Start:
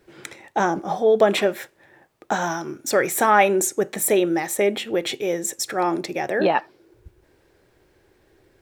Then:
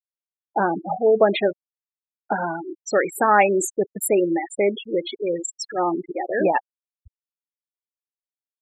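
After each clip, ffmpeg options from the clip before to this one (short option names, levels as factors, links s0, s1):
-af "afftfilt=real='re*gte(hypot(re,im),0.141)':imag='im*gte(hypot(re,im),0.141)':win_size=1024:overlap=0.75"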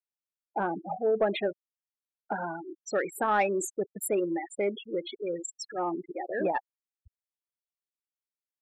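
-af "asoftclip=type=tanh:threshold=0.501,volume=0.376"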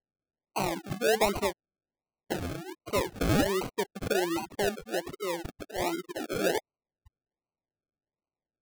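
-af "acrusher=samples=36:mix=1:aa=0.000001:lfo=1:lforange=21.6:lforate=1.3"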